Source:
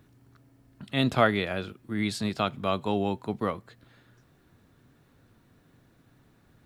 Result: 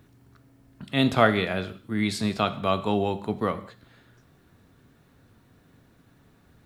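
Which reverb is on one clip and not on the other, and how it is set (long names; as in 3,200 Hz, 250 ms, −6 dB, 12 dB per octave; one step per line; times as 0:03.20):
reverb whose tail is shaped and stops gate 230 ms falling, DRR 11 dB
level +2.5 dB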